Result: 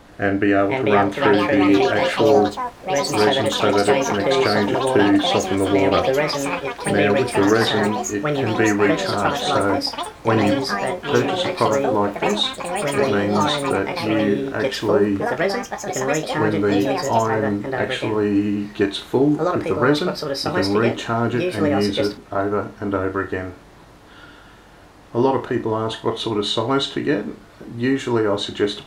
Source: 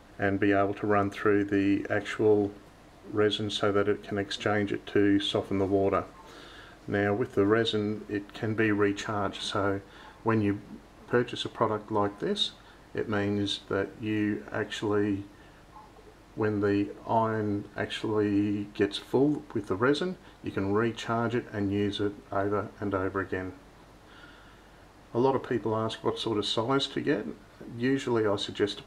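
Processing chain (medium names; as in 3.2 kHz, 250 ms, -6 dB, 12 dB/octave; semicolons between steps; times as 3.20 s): flutter echo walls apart 5.8 m, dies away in 0.23 s; ever faster or slower copies 549 ms, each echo +5 st, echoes 3; trim +7 dB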